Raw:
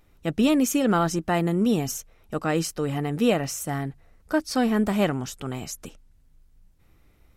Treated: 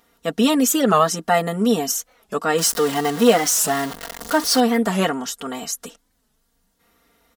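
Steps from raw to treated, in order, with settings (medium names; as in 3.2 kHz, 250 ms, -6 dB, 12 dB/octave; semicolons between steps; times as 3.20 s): 2.58–4.60 s: jump at every zero crossing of -27.5 dBFS; high-pass 580 Hz 6 dB/octave; peaking EQ 2.4 kHz -8.5 dB 0.3 oct; comb 4.3 ms, depth 89%; warped record 45 rpm, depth 160 cents; trim +6.5 dB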